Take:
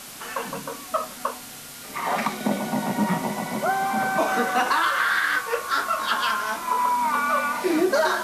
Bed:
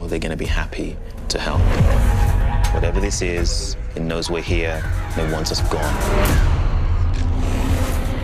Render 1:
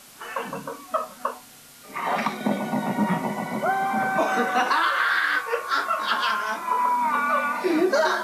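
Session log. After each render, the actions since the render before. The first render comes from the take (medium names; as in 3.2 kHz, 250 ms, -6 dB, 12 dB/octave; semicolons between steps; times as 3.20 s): noise print and reduce 8 dB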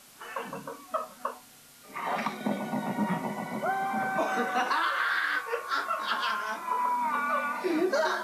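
trim -6 dB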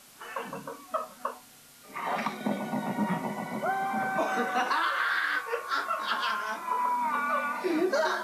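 no audible change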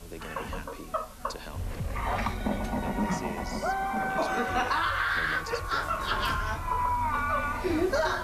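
add bed -19 dB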